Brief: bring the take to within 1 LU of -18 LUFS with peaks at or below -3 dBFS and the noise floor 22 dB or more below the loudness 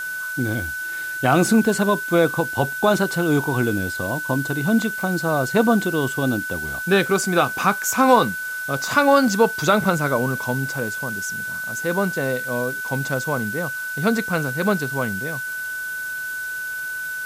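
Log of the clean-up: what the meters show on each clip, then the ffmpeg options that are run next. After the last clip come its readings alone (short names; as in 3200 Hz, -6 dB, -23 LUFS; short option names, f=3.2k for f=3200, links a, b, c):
steady tone 1500 Hz; tone level -26 dBFS; noise floor -29 dBFS; noise floor target -43 dBFS; loudness -21.0 LUFS; peak -3.0 dBFS; loudness target -18.0 LUFS
-> -af "bandreject=f=1.5k:w=30"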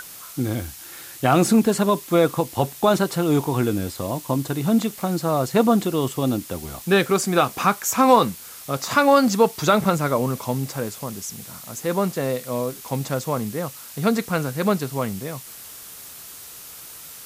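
steady tone none; noise floor -40 dBFS; noise floor target -44 dBFS
-> -af "afftdn=nr=6:nf=-40"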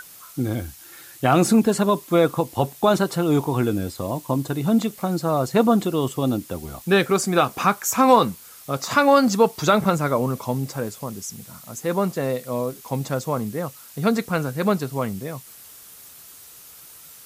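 noise floor -45 dBFS; loudness -21.5 LUFS; peak -3.5 dBFS; loudness target -18.0 LUFS
-> -af "volume=3.5dB,alimiter=limit=-3dB:level=0:latency=1"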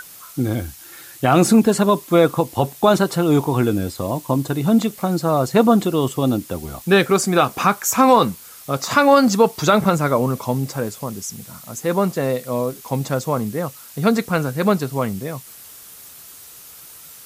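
loudness -18.5 LUFS; peak -3.0 dBFS; noise floor -41 dBFS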